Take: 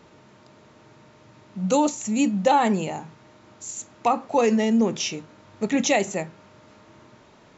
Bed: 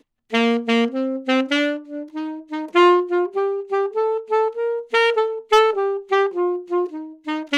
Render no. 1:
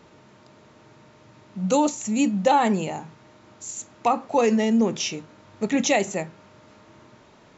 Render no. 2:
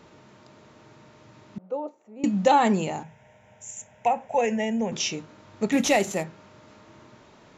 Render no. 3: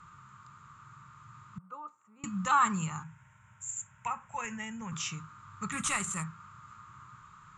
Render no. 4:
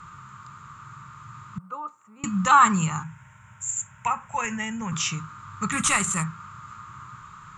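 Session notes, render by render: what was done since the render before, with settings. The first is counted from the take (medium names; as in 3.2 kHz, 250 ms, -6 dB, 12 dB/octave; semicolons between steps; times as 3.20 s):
no audible change
1.58–2.24 s: ladder band-pass 580 Hz, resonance 35%; 3.03–4.92 s: static phaser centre 1.2 kHz, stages 6; 5.72–6.24 s: CVSD coder 64 kbps
FFT filter 160 Hz 0 dB, 250 Hz -20 dB, 490 Hz -25 dB, 690 Hz -28 dB, 1.2 kHz +12 dB, 1.8 kHz -6 dB, 2.8 kHz -8 dB, 5.7 kHz -13 dB, 8.5 kHz +12 dB, 13 kHz -21 dB
trim +9.5 dB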